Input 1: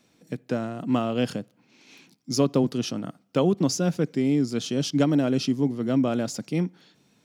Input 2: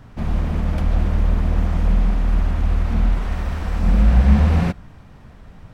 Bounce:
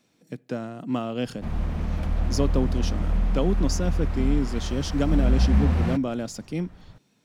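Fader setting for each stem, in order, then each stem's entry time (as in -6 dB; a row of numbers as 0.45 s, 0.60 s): -3.5 dB, -6.5 dB; 0.00 s, 1.25 s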